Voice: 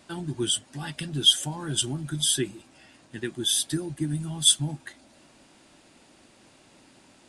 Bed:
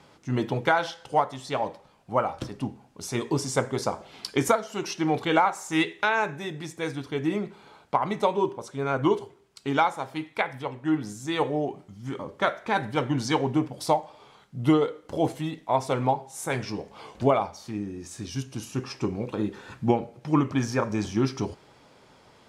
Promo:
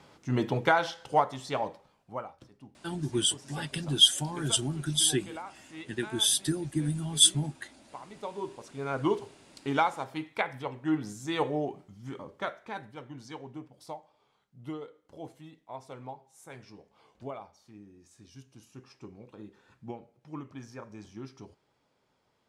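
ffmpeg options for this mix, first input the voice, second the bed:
ffmpeg -i stem1.wav -i stem2.wav -filter_complex "[0:a]adelay=2750,volume=-1dB[link_01];[1:a]volume=15.5dB,afade=type=out:start_time=1.37:duration=0.99:silence=0.112202,afade=type=in:start_time=8.09:duration=1.19:silence=0.141254,afade=type=out:start_time=11.57:duration=1.4:silence=0.177828[link_02];[link_01][link_02]amix=inputs=2:normalize=0" out.wav

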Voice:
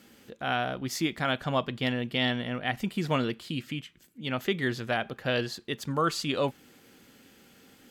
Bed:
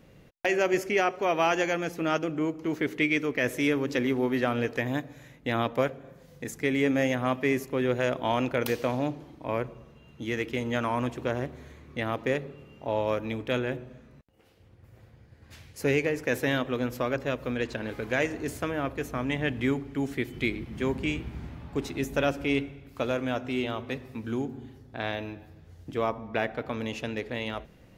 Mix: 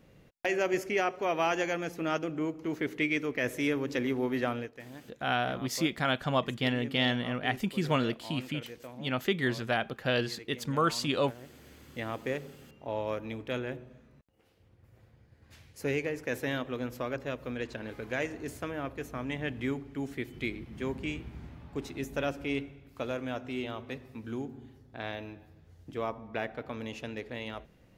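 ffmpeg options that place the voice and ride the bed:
ffmpeg -i stem1.wav -i stem2.wav -filter_complex "[0:a]adelay=4800,volume=-0.5dB[link_01];[1:a]volume=8dB,afade=type=out:start_time=4.49:duration=0.22:silence=0.199526,afade=type=in:start_time=11.43:duration=0.41:silence=0.251189[link_02];[link_01][link_02]amix=inputs=2:normalize=0" out.wav

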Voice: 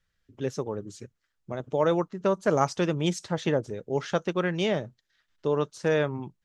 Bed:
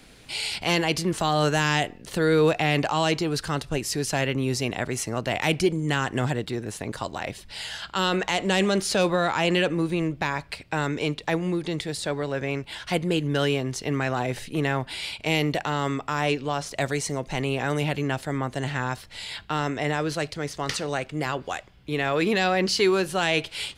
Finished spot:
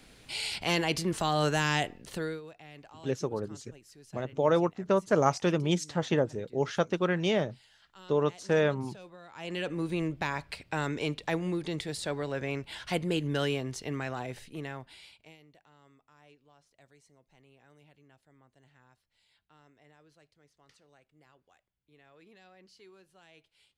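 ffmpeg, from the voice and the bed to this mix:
ffmpeg -i stem1.wav -i stem2.wav -filter_complex "[0:a]adelay=2650,volume=-1dB[link_01];[1:a]volume=17dB,afade=type=out:start_time=2:duration=0.41:silence=0.0749894,afade=type=in:start_time=9.31:duration=0.66:silence=0.0794328,afade=type=out:start_time=13.29:duration=2.08:silence=0.0334965[link_02];[link_01][link_02]amix=inputs=2:normalize=0" out.wav

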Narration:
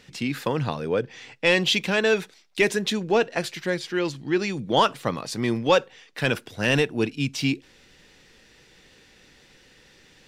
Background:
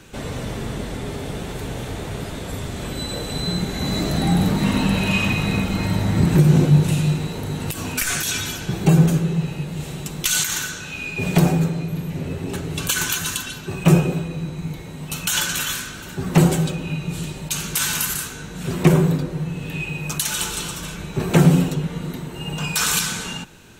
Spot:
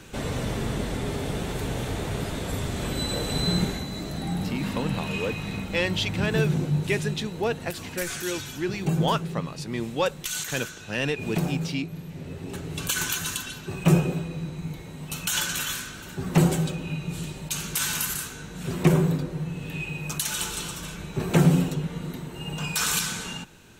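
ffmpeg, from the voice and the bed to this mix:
ffmpeg -i stem1.wav -i stem2.wav -filter_complex "[0:a]adelay=4300,volume=-6dB[link_01];[1:a]volume=5.5dB,afade=type=out:start_time=3.64:duration=0.22:silence=0.298538,afade=type=in:start_time=12.15:duration=0.82:silence=0.501187[link_02];[link_01][link_02]amix=inputs=2:normalize=0" out.wav

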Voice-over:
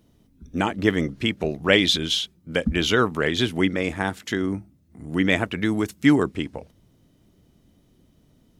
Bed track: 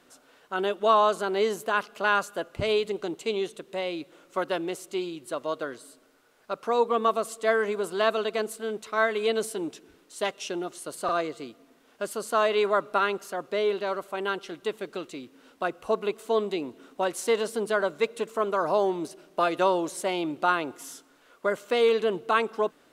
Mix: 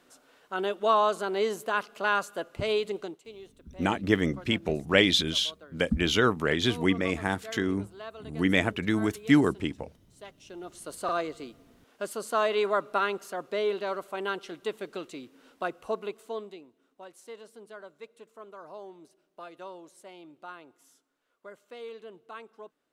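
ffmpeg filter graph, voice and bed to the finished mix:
ffmpeg -i stem1.wav -i stem2.wav -filter_complex "[0:a]adelay=3250,volume=-3.5dB[link_01];[1:a]volume=13dB,afade=type=out:start_time=2.98:duration=0.23:silence=0.16788,afade=type=in:start_time=10.44:duration=0.49:silence=0.16788,afade=type=out:start_time=15.56:duration=1.1:silence=0.133352[link_02];[link_01][link_02]amix=inputs=2:normalize=0" out.wav

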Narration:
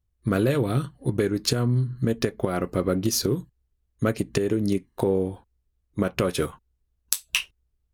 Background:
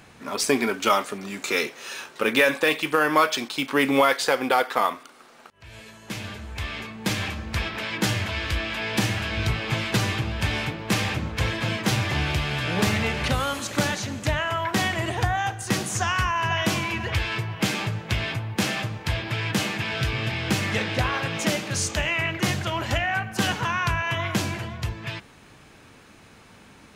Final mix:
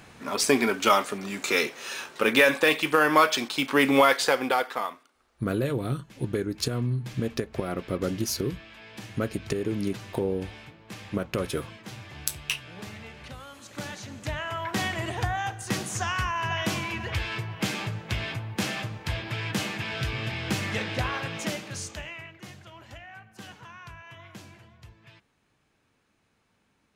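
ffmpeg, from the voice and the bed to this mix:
ffmpeg -i stem1.wav -i stem2.wav -filter_complex "[0:a]adelay=5150,volume=-5dB[link_01];[1:a]volume=14dB,afade=type=out:start_time=4.19:duration=0.91:silence=0.11885,afade=type=in:start_time=13.52:duration=1.33:silence=0.199526,afade=type=out:start_time=21.12:duration=1.21:silence=0.158489[link_02];[link_01][link_02]amix=inputs=2:normalize=0" out.wav

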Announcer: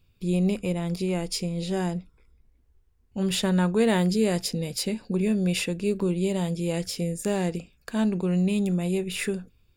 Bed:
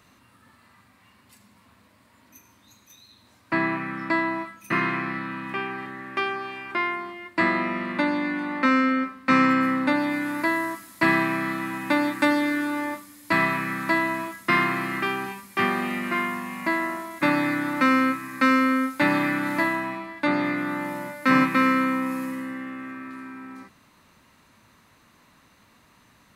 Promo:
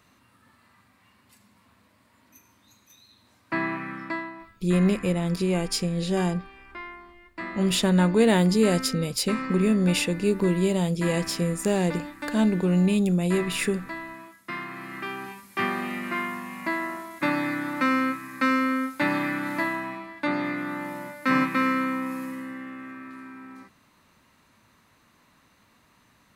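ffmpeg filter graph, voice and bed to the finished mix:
ffmpeg -i stem1.wav -i stem2.wav -filter_complex "[0:a]adelay=4400,volume=2.5dB[link_01];[1:a]volume=6.5dB,afade=type=out:start_time=3.92:duration=0.41:silence=0.316228,afade=type=in:start_time=14.67:duration=0.87:silence=0.316228[link_02];[link_01][link_02]amix=inputs=2:normalize=0" out.wav

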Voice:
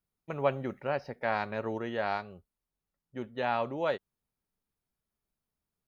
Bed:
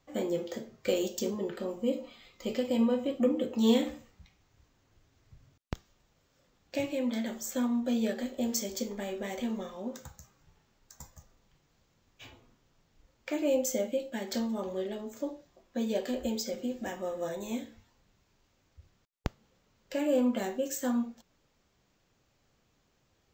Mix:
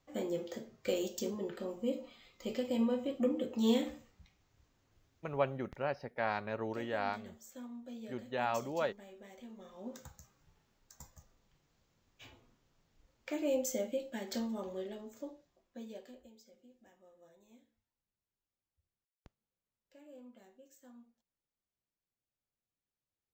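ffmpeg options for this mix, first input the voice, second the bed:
ffmpeg -i stem1.wav -i stem2.wav -filter_complex "[0:a]adelay=4950,volume=-4dB[link_01];[1:a]volume=7.5dB,afade=type=out:start_time=5.05:duration=0.66:silence=0.237137,afade=type=in:start_time=9.56:duration=0.44:silence=0.237137,afade=type=out:start_time=14.44:duration=1.86:silence=0.0749894[link_02];[link_01][link_02]amix=inputs=2:normalize=0" out.wav

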